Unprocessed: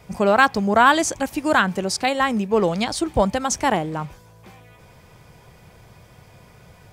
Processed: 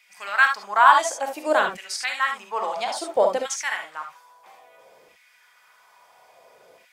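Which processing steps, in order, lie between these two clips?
LFO high-pass saw down 0.59 Hz 420–2300 Hz; non-linear reverb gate 90 ms rising, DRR 3.5 dB; gain -6.5 dB

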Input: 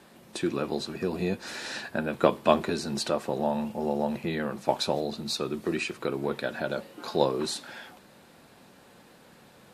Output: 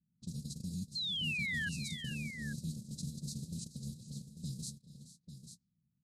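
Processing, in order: per-bin compression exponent 0.4; inverse Chebyshev band-stop 450–2200 Hz, stop band 60 dB; gate -34 dBFS, range -43 dB; high shelf 4600 Hz -6.5 dB; compressor 5:1, threshold -43 dBFS, peak gain reduction 10 dB; limiter -41 dBFS, peak gain reduction 9 dB; time stretch by phase-locked vocoder 0.62×; low-pass opened by the level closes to 1000 Hz, open at -49.5 dBFS; painted sound fall, 0.95–1.69, 1600–4300 Hz -47 dBFS; tapped delay 0.428/0.461/0.843 s -16.5/-18.5/-10 dB; gain +10 dB

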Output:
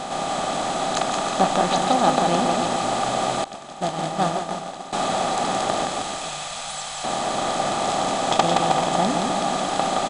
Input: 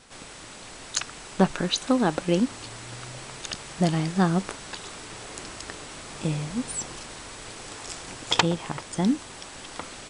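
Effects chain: per-bin compression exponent 0.4; 5.85–7.04 passive tone stack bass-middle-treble 10-0-10; on a send: bouncing-ball echo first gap 0.17 s, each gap 0.85×, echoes 5; 3.44–4.93 on the sum: expander -10 dBFS; bell 790 Hz +13 dB 0.23 oct; small resonant body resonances 650/1200 Hz, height 12 dB, ringing for 30 ms; gain -7.5 dB

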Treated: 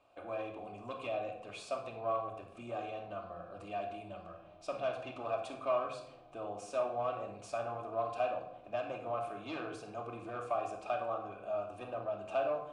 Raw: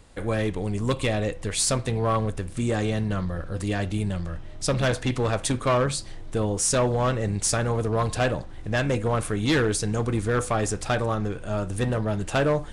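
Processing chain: compressor 2:1, threshold -26 dBFS, peak gain reduction 4.5 dB; vowel filter a; shoebox room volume 2000 m³, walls furnished, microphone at 2.7 m

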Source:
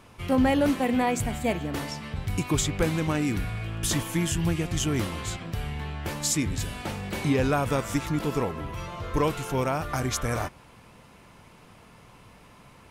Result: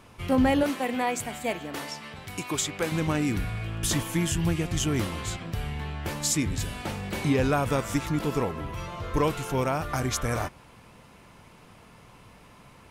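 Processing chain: 0.63–2.92 HPF 460 Hz 6 dB/oct

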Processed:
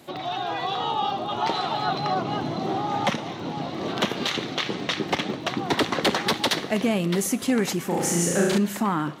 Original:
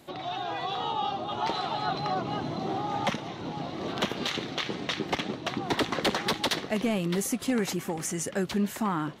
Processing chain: HPF 89 Hz; 7.87–8.58 flutter echo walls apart 6 m, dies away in 1.1 s; crackle 28/s -45 dBFS; Schroeder reverb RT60 0.94 s, combs from 27 ms, DRR 17 dB; gain +4.5 dB

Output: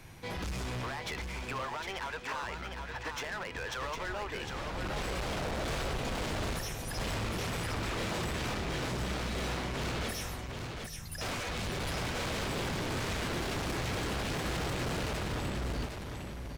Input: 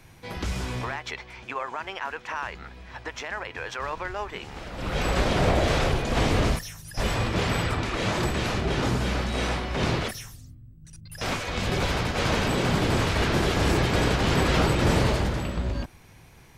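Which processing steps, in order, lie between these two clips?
in parallel at -2 dB: compressor, threshold -33 dBFS, peak gain reduction 15 dB; on the sum: overloaded stage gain 29 dB; feedback echo 0.756 s, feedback 17%, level -5.5 dB; gain -5 dB

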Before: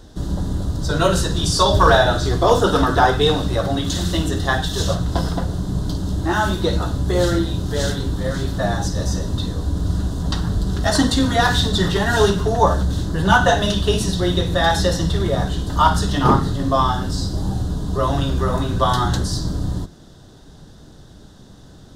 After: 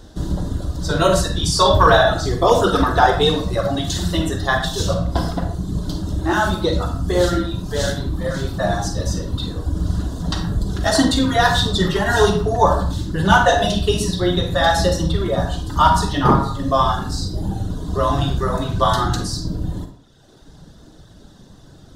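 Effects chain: reverb removal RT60 1.3 s; on a send: reverb RT60 0.50 s, pre-delay 37 ms, DRR 4.5 dB; on the sum: gain +1 dB

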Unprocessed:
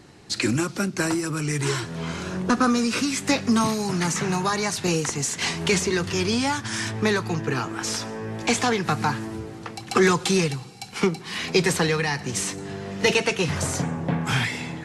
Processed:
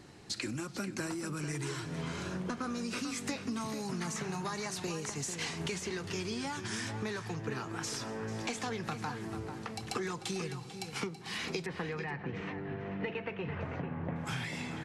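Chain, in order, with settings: 11.66–14.16 LPF 2500 Hz 24 dB/oct; compressor, threshold -30 dBFS, peak gain reduction 15 dB; outdoor echo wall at 76 m, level -8 dB; gain -5 dB

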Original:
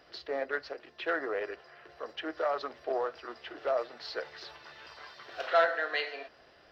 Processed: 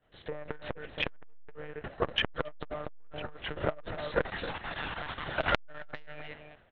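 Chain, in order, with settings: level quantiser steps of 13 dB; expander -57 dBFS; low shelf 290 Hz +6.5 dB; monotone LPC vocoder at 8 kHz 150 Hz; AGC gain up to 12.5 dB; on a send: echo 0.272 s -14 dB; on the sum: core saturation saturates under 1500 Hz; gain +3.5 dB

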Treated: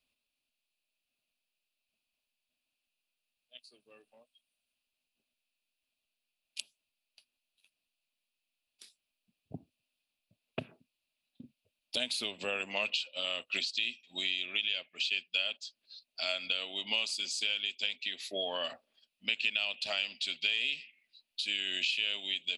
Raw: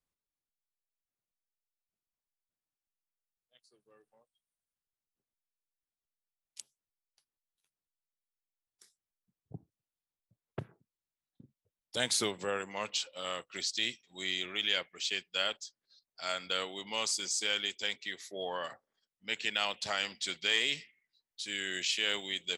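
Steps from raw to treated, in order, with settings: band shelf 3500 Hz +11.5 dB 1.1 oct; compressor 5:1, threshold -36 dBFS, peak gain reduction 19 dB; thirty-one-band EQ 125 Hz -4 dB, 250 Hz +11 dB, 630 Hz +10 dB, 2500 Hz +11 dB, 10000 Hz +7 dB; gain +1 dB

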